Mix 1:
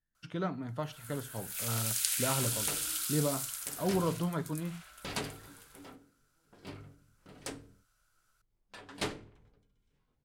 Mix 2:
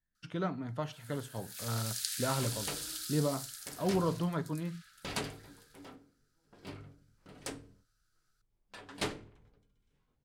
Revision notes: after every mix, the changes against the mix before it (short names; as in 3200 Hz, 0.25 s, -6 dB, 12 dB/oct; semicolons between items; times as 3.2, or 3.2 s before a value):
first sound: add rippled Chebyshev high-pass 1200 Hz, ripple 9 dB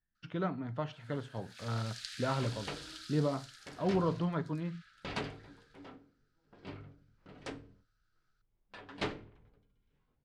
master: add LPF 3600 Hz 12 dB/oct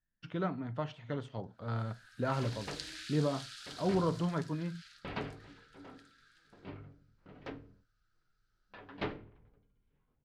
first sound: entry +0.75 s; second sound: add air absorption 240 m